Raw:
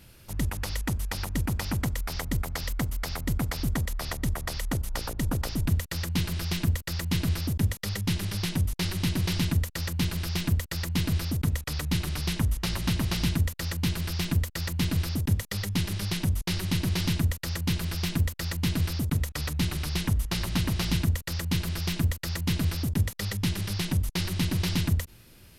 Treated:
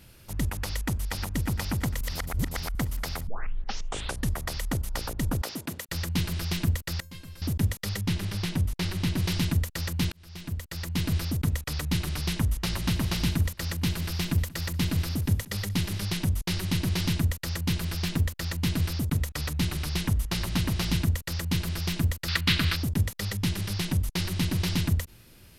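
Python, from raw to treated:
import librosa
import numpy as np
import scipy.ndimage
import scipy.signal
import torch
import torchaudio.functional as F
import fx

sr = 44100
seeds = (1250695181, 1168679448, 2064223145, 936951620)

y = fx.echo_throw(x, sr, start_s=0.68, length_s=0.61, ms=350, feedback_pct=80, wet_db=-15.0)
y = fx.highpass(y, sr, hz=280.0, slope=12, at=(5.42, 5.89))
y = fx.comb_fb(y, sr, f0_hz=530.0, decay_s=0.26, harmonics='all', damping=0.0, mix_pct=90, at=(7.0, 7.42))
y = fx.high_shelf(y, sr, hz=5000.0, db=-5.5, at=(8.01, 9.18))
y = fx.echo_throw(y, sr, start_s=12.49, length_s=0.56, ms=410, feedback_pct=50, wet_db=-17.5)
y = fx.echo_single(y, sr, ms=184, db=-20.5, at=(13.66, 15.99))
y = fx.doppler_dist(y, sr, depth_ms=0.28, at=(17.99, 18.58))
y = fx.band_shelf(y, sr, hz=2300.0, db=11.5, octaves=2.3, at=(22.28, 22.76))
y = fx.edit(y, sr, fx.reverse_span(start_s=2.01, length_s=0.74),
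    fx.tape_start(start_s=3.27, length_s=1.04),
    fx.fade_in_span(start_s=10.12, length_s=1.01), tone=tone)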